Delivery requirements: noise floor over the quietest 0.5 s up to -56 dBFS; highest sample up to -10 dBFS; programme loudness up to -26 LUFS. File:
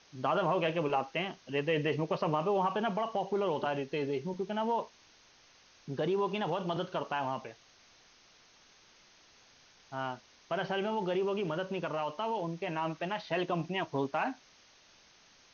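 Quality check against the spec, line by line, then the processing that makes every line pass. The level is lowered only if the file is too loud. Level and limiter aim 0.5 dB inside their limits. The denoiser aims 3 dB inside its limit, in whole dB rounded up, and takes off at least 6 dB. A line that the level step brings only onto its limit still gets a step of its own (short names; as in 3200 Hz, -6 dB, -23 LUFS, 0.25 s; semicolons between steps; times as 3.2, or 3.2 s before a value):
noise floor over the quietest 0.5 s -62 dBFS: OK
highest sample -17.5 dBFS: OK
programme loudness -33.5 LUFS: OK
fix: none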